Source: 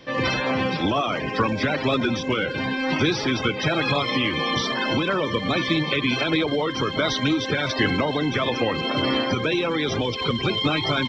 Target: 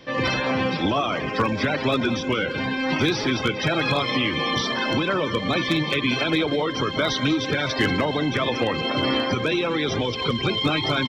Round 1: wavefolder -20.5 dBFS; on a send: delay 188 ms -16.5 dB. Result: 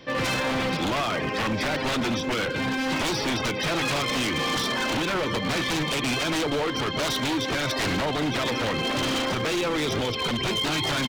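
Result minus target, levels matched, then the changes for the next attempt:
wavefolder: distortion +24 dB
change: wavefolder -12 dBFS

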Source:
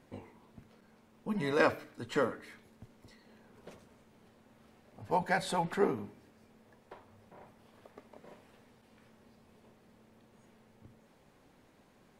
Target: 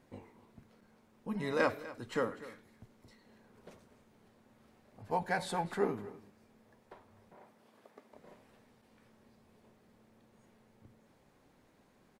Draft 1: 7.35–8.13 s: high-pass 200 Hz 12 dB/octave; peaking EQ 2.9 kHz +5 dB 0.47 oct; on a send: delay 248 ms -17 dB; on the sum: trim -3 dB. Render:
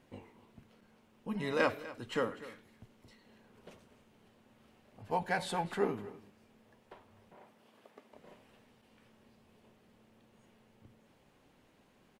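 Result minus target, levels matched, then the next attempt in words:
4 kHz band +2.5 dB
7.35–8.13 s: high-pass 200 Hz 12 dB/octave; peaking EQ 2.9 kHz -2 dB 0.47 oct; on a send: delay 248 ms -17 dB; on the sum: trim -3 dB

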